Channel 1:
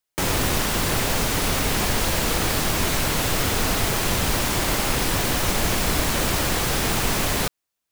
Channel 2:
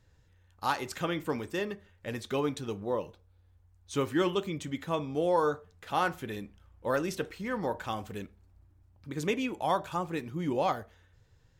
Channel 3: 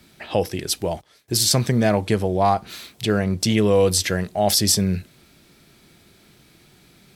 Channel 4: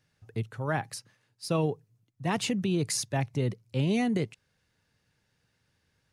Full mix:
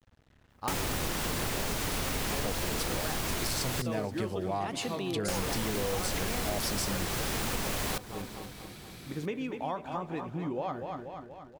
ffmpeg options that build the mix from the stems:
ffmpeg -i stem1.wav -i stem2.wav -i stem3.wav -i stem4.wav -filter_complex "[0:a]adelay=500,volume=0.5dB,asplit=3[link_01][link_02][link_03];[link_01]atrim=end=3.82,asetpts=PTS-STARTPTS,afade=type=out:start_time=3.816:duration=0.004:curve=hsin[link_04];[link_02]atrim=start=3.82:end=5.28,asetpts=PTS-STARTPTS,volume=0[link_05];[link_03]atrim=start=5.28,asetpts=PTS-STARTPTS,afade=type=in:duration=0.004:curve=hsin[link_06];[link_04][link_05][link_06]concat=n=3:v=0:a=1,asplit=2[link_07][link_08];[link_08]volume=-23.5dB[link_09];[1:a]acrusher=bits=9:mix=0:aa=0.000001,aemphasis=mode=reproduction:type=75kf,volume=-0.5dB,asplit=2[link_10][link_11];[link_11]volume=-9dB[link_12];[2:a]acompressor=mode=upward:threshold=-33dB:ratio=2.5,adelay=2100,volume=-4.5dB,asplit=2[link_13][link_14];[link_14]volume=-17.5dB[link_15];[3:a]highpass=320,adelay=2350,volume=2dB[link_16];[link_09][link_12][link_15]amix=inputs=3:normalize=0,aecho=0:1:239|478|717|956|1195|1434|1673|1912:1|0.56|0.314|0.176|0.0983|0.0551|0.0308|0.0173[link_17];[link_07][link_10][link_13][link_16][link_17]amix=inputs=5:normalize=0,acompressor=threshold=-31dB:ratio=4" out.wav

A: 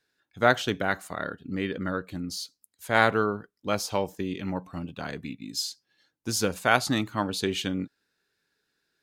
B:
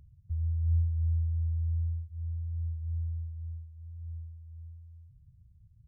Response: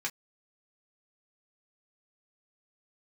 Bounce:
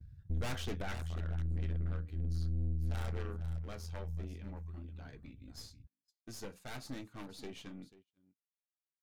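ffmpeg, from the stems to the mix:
-filter_complex "[0:a]aeval=exprs='0.1*(abs(mod(val(0)/0.1+3,4)-2)-1)':channel_layout=same,volume=-9.5dB,afade=type=out:start_time=0.84:duration=0.22:silence=0.316228,asplit=4[link_01][link_02][link_03][link_04];[link_02]volume=-6.5dB[link_05];[link_03]volume=-11.5dB[link_06];[1:a]acompressor=threshold=-31dB:ratio=6,volume=1.5dB[link_07];[link_04]apad=whole_len=258999[link_08];[link_07][link_08]sidechaincompress=threshold=-49dB:ratio=8:attack=26:release=840[link_09];[2:a]atrim=start_sample=2205[link_10];[link_05][link_10]afir=irnorm=-1:irlink=0[link_11];[link_06]aecho=0:1:490:1[link_12];[link_01][link_09][link_11][link_12]amix=inputs=4:normalize=0,agate=range=-29dB:threshold=-57dB:ratio=16:detection=peak,aeval=exprs='(tanh(89.1*val(0)+0.75)-tanh(0.75))/89.1':channel_layout=same,lowshelf=frequency=390:gain=7"

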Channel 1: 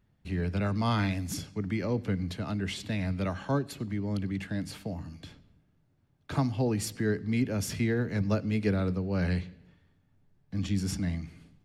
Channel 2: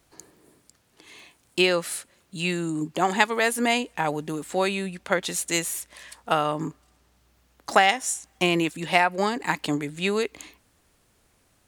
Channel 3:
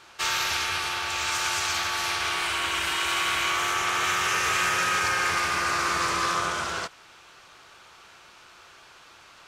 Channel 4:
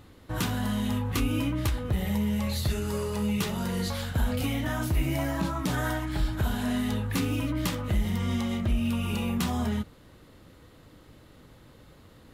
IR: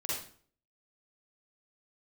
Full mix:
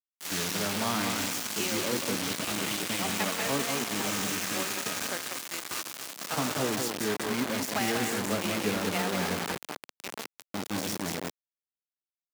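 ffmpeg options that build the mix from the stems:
-filter_complex "[0:a]volume=-1.5dB,asplit=2[link_01][link_02];[link_02]volume=-4.5dB[link_03];[1:a]volume=-15.5dB,asplit=3[link_04][link_05][link_06];[link_05]volume=-18.5dB[link_07];[link_06]volume=-5dB[link_08];[2:a]aemphasis=mode=production:type=riaa,volume=-17.5dB,asplit=2[link_09][link_10];[link_10]volume=-15dB[link_11];[3:a]adelay=800,volume=-13dB[link_12];[4:a]atrim=start_sample=2205[link_13];[link_07][link_11]amix=inputs=2:normalize=0[link_14];[link_14][link_13]afir=irnorm=-1:irlink=0[link_15];[link_03][link_08]amix=inputs=2:normalize=0,aecho=0:1:189|378|567|756:1|0.29|0.0841|0.0244[link_16];[link_01][link_04][link_09][link_12][link_15][link_16]amix=inputs=6:normalize=0,lowpass=frequency=8800:width=0.5412,lowpass=frequency=8800:width=1.3066,acrusher=bits=4:mix=0:aa=0.000001,highpass=220"

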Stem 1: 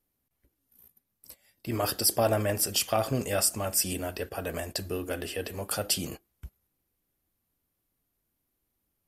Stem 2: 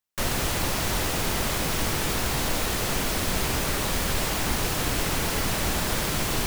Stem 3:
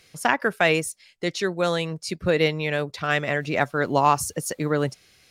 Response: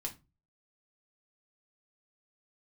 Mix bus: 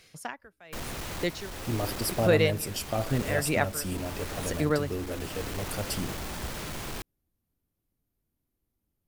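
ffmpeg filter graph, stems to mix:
-filter_complex "[0:a]lowshelf=frequency=470:gain=11.5,volume=-8dB[link_01];[1:a]aemphasis=mode=reproduction:type=cd,acrusher=bits=4:mix=0:aa=0.000001,asoftclip=type=hard:threshold=-27.5dB,adelay=550,volume=-5.5dB[link_02];[2:a]aeval=exprs='val(0)*pow(10,-32*(0.5-0.5*cos(2*PI*0.86*n/s))/20)':channel_layout=same,volume=-1dB,asplit=2[link_03][link_04];[link_04]apad=whole_len=309554[link_05];[link_02][link_05]sidechaincompress=threshold=-34dB:ratio=3:attack=39:release=735[link_06];[link_01][link_06][link_03]amix=inputs=3:normalize=0"

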